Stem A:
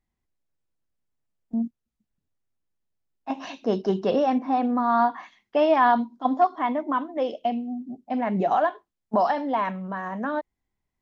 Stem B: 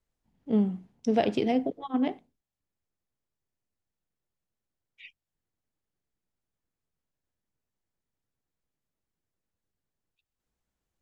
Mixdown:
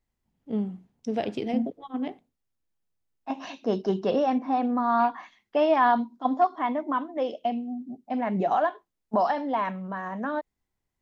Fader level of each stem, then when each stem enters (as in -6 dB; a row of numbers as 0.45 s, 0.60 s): -2.0 dB, -4.0 dB; 0.00 s, 0.00 s